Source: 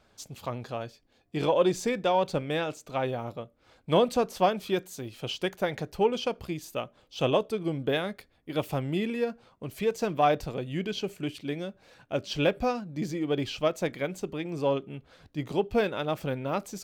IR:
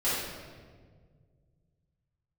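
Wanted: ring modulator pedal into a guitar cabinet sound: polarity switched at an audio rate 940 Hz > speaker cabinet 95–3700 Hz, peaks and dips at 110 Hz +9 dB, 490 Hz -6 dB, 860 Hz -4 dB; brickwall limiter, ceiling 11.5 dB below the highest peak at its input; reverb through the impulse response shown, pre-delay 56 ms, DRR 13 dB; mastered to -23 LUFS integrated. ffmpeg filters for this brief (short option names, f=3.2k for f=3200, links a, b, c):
-filter_complex "[0:a]alimiter=limit=-22dB:level=0:latency=1,asplit=2[a][b];[1:a]atrim=start_sample=2205,adelay=56[c];[b][c]afir=irnorm=-1:irlink=0,volume=-23.5dB[d];[a][d]amix=inputs=2:normalize=0,aeval=exprs='val(0)*sgn(sin(2*PI*940*n/s))':c=same,highpass=95,equalizer=f=110:t=q:w=4:g=9,equalizer=f=490:t=q:w=4:g=-6,equalizer=f=860:t=q:w=4:g=-4,lowpass=f=3.7k:w=0.5412,lowpass=f=3.7k:w=1.3066,volume=10.5dB"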